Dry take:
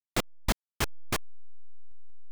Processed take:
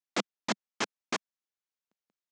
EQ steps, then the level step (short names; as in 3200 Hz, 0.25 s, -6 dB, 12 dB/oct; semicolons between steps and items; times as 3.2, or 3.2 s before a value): elliptic band-pass 200–6700 Hz, stop band 40 dB; 0.0 dB